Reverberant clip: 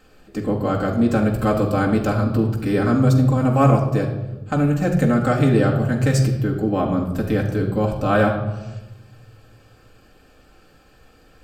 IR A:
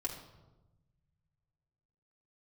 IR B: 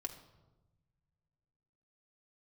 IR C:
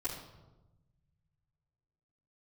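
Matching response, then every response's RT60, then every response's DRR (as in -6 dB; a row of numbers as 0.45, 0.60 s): A; 1.1, 1.1, 1.1 s; -2.0, 3.5, -12.0 dB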